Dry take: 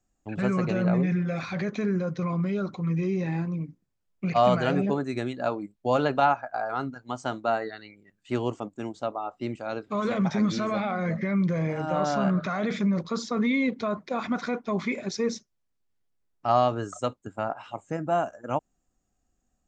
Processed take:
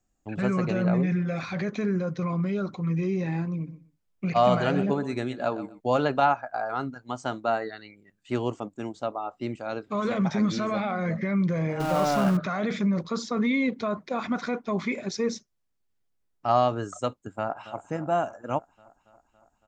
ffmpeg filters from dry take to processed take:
ffmpeg -i in.wav -filter_complex "[0:a]asplit=3[link_01][link_02][link_03];[link_01]afade=type=out:start_time=3.66:duration=0.02[link_04];[link_02]aecho=1:1:123|246:0.2|0.0379,afade=type=in:start_time=3.66:duration=0.02,afade=type=out:start_time=5.79:duration=0.02[link_05];[link_03]afade=type=in:start_time=5.79:duration=0.02[link_06];[link_04][link_05][link_06]amix=inputs=3:normalize=0,asettb=1/sr,asplit=3[link_07][link_08][link_09];[link_07]atrim=end=11.804[link_10];[link_08]atrim=start=11.8:end=12.37,asetpts=PTS-STARTPTS,afade=type=in:duration=0.004:curve=qsin,afade=type=out:start_time=0.566:duration=0.004:curve=qsin,aeval=exprs='val(0)+0.5*0.0355*sgn(val(0))':channel_layout=same[link_11];[link_09]atrim=start=12.366[link_12];[link_10][link_11]acrossfade=duration=0.004:curve1=hsin:curve2=qsin[link_13];[link_13][link_12]acrossfade=duration=0.004:curve1=qsin:curve2=hsin,asplit=2[link_14][link_15];[link_15]afade=type=in:start_time=17.28:duration=0.01,afade=type=out:start_time=17.78:duration=0.01,aecho=0:1:280|560|840|1120|1400|1680|1960|2240|2520:0.188365|0.131855|0.0922988|0.0646092|0.0452264|0.0316585|0.0221609|0.0155127|0.0108589[link_16];[link_14][link_16]amix=inputs=2:normalize=0" out.wav

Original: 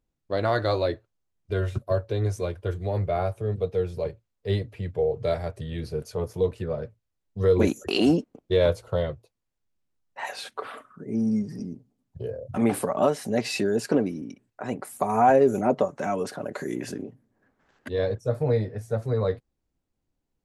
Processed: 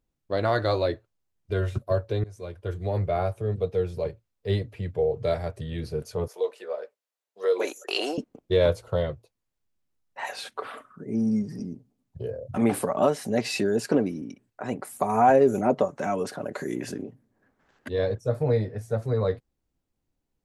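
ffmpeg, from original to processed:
ffmpeg -i in.wav -filter_complex "[0:a]asettb=1/sr,asplit=3[link_01][link_02][link_03];[link_01]atrim=end=6.284[link_04];[link_02]atrim=start=6.28:end=8.18,asetpts=PTS-STARTPTS,afade=type=in:duration=0.004:curve=qsin,afade=type=out:start_time=1.896:duration=0.004:curve=qsin,highpass=frequency=460:width=0.5412,highpass=frequency=460:width=1.3066[link_05];[link_03]atrim=start=8.176[link_06];[link_04][link_05]acrossfade=duration=0.004:curve1=hsin:curve2=qsin[link_07];[link_07][link_06]acrossfade=duration=0.004:curve1=qsin:curve2=hsin,asplit=2[link_08][link_09];[link_08]atrim=end=2.24,asetpts=PTS-STARTPTS,afade=type=out:start_time=2.236:duration=0.004:curve=hsin:silence=0.0749894[link_10];[link_09]atrim=start=2.24,asetpts=PTS-STARTPTS,afade=type=in:duration=0.63:silence=0.0749894[link_11];[link_10][link_11]concat=n=2:v=0:a=1" out.wav

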